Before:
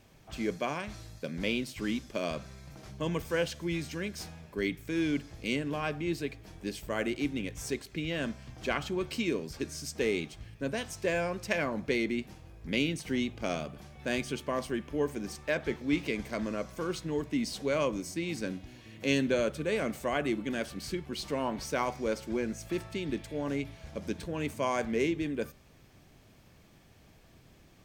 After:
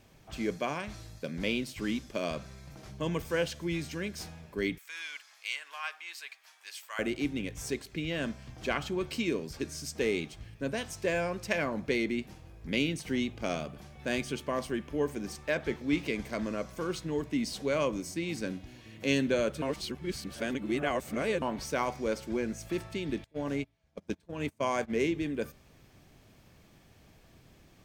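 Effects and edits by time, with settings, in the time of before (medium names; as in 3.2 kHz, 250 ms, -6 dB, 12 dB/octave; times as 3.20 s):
4.78–6.99 s: high-pass 1 kHz 24 dB/octave
19.62–21.42 s: reverse
23.24–24.99 s: gate -35 dBFS, range -26 dB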